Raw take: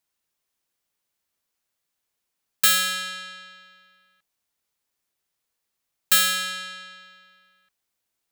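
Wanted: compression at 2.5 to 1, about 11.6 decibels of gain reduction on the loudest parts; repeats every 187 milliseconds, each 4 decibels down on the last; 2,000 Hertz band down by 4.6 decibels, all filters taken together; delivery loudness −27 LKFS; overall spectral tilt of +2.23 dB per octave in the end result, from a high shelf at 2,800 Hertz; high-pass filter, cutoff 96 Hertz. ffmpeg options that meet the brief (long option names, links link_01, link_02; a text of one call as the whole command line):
ffmpeg -i in.wav -af "highpass=96,equalizer=frequency=2000:width_type=o:gain=-9,highshelf=frequency=2800:gain=7,acompressor=threshold=-26dB:ratio=2.5,aecho=1:1:187|374|561|748|935|1122|1309|1496|1683:0.631|0.398|0.25|0.158|0.0994|0.0626|0.0394|0.0249|0.0157,volume=-1.5dB" out.wav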